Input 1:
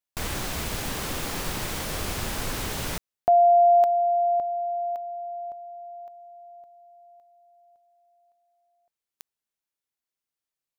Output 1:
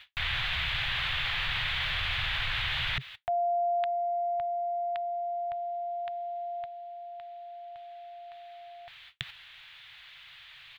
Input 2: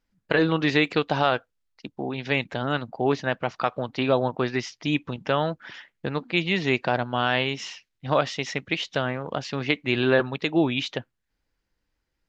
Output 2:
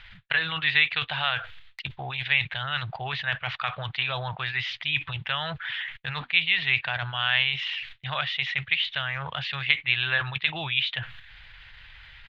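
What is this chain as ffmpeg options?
ffmpeg -i in.wav -af "firequalizer=gain_entry='entry(130,0);entry(230,-27);entry(710,-5);entry(1800,10);entry(3500,12);entry(5400,-15);entry(8600,-24)':delay=0.05:min_phase=1,agate=range=-20dB:threshold=-52dB:ratio=16:release=114:detection=rms,areverse,acompressor=mode=upward:threshold=-20dB:ratio=4:attack=4.8:release=58:knee=2.83:detection=peak,areverse,volume=-6.5dB" out.wav

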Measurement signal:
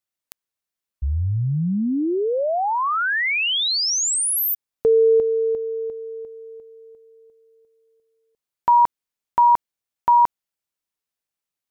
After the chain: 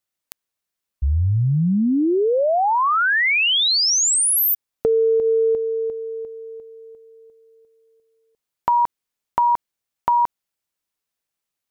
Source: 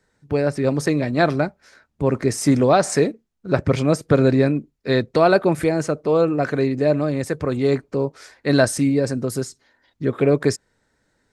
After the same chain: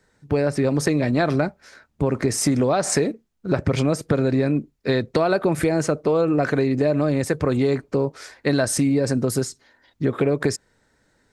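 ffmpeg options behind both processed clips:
ffmpeg -i in.wav -af "acompressor=threshold=-18dB:ratio=10:attack=4.9:release=211:knee=1:detection=peak,volume=3.5dB" out.wav

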